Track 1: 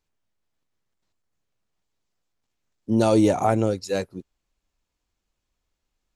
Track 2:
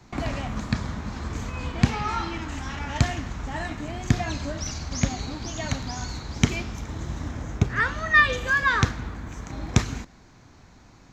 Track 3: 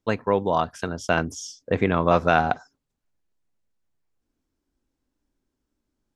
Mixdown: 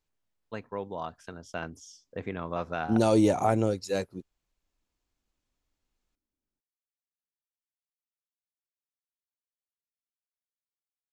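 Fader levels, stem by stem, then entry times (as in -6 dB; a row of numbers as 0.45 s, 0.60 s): -4.0 dB, mute, -14.0 dB; 0.00 s, mute, 0.45 s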